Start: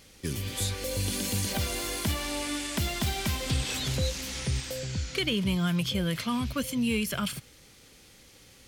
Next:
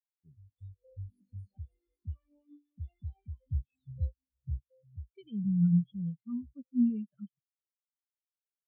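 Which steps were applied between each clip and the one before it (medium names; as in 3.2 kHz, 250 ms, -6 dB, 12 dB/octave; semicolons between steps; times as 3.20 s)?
spectral contrast expander 4:1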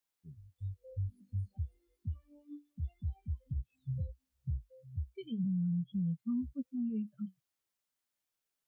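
compression, threshold -31 dBFS, peak gain reduction 10 dB; peak limiter -37.5 dBFS, peak gain reduction 10.5 dB; flange 0.32 Hz, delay 3.5 ms, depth 6.6 ms, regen -65%; trim +12 dB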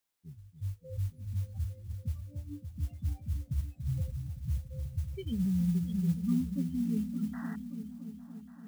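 painted sound noise, 7.33–7.56 s, 630–2000 Hz -53 dBFS; delay with an opening low-pass 285 ms, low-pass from 200 Hz, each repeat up 1 oct, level -6 dB; modulation noise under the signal 27 dB; trim +3.5 dB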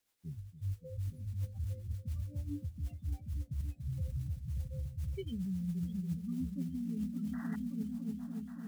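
reverse; compression 12:1, threshold -40 dBFS, peak gain reduction 16 dB; reverse; rotary cabinet horn 7.5 Hz; trim +7 dB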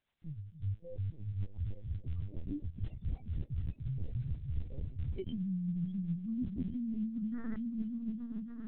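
LPC vocoder at 8 kHz pitch kept; trim +1 dB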